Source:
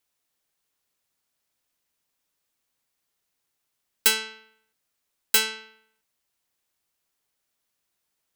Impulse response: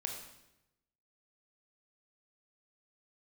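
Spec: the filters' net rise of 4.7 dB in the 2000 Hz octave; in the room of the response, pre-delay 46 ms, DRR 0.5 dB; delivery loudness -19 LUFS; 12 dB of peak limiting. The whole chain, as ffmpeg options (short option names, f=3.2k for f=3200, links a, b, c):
-filter_complex "[0:a]equalizer=f=2k:t=o:g=6.5,alimiter=limit=-15.5dB:level=0:latency=1,asplit=2[a][b];[1:a]atrim=start_sample=2205,adelay=46[c];[b][c]afir=irnorm=-1:irlink=0,volume=-0.5dB[d];[a][d]amix=inputs=2:normalize=0,volume=7dB"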